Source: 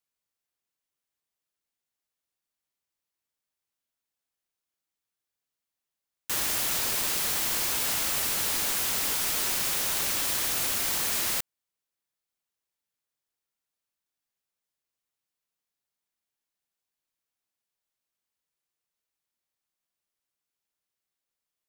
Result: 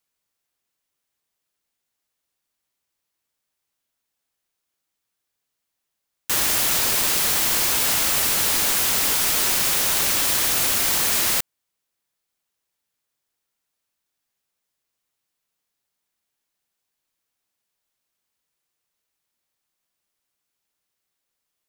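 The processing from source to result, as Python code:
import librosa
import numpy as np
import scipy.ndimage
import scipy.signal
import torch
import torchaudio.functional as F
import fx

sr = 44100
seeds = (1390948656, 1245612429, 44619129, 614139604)

y = F.gain(torch.from_numpy(x), 7.5).numpy()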